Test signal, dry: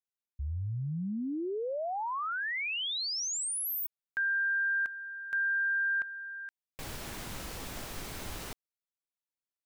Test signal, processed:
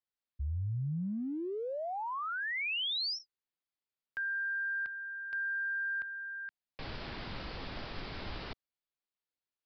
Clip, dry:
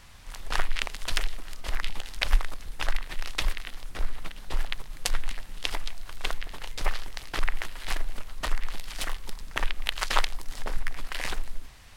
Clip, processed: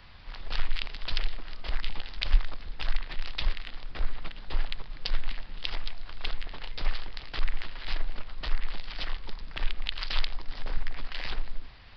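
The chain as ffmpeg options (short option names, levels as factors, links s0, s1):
-filter_complex "[0:a]aresample=11025,aresample=44100,acrossover=split=150|2800[s0][s1][s2];[s1]acompressor=threshold=0.0178:ratio=5:attack=0.25:release=39:knee=2.83:detection=peak[s3];[s0][s3][s2]amix=inputs=3:normalize=0"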